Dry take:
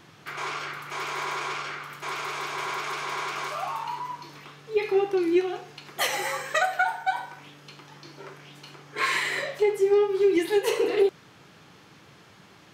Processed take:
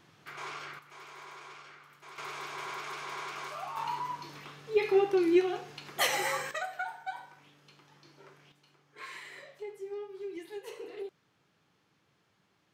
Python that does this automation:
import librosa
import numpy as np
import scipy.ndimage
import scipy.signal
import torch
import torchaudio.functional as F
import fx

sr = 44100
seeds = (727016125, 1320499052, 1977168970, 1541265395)

y = fx.gain(x, sr, db=fx.steps((0.0, -9.0), (0.79, -17.5), (2.18, -8.5), (3.77, -2.0), (6.51, -12.5), (8.52, -19.5)))